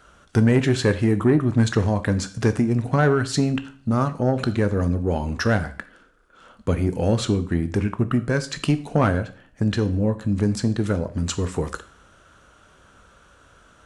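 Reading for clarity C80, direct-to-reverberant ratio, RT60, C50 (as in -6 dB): 19.5 dB, 10.5 dB, 0.50 s, 15.5 dB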